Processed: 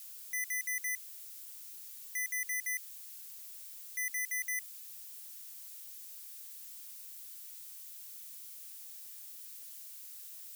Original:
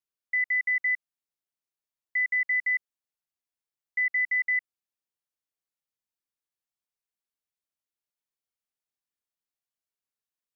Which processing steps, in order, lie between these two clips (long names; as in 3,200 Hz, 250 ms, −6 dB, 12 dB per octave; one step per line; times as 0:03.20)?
power curve on the samples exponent 0.35
first difference
level −3 dB